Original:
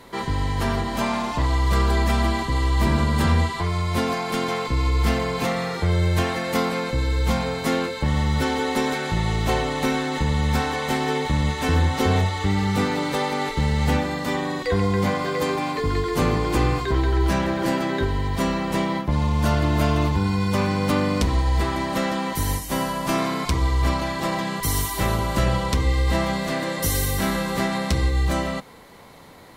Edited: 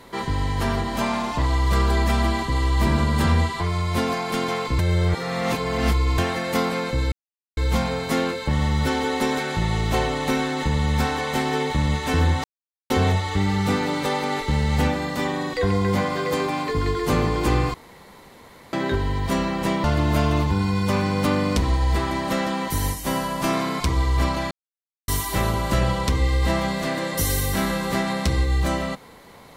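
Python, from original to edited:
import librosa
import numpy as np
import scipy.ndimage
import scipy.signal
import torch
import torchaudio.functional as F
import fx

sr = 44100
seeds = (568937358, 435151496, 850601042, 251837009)

y = fx.edit(x, sr, fx.reverse_span(start_s=4.79, length_s=1.39),
    fx.insert_silence(at_s=7.12, length_s=0.45),
    fx.insert_silence(at_s=11.99, length_s=0.46),
    fx.room_tone_fill(start_s=16.83, length_s=0.99),
    fx.cut(start_s=18.93, length_s=0.56),
    fx.silence(start_s=24.16, length_s=0.57), tone=tone)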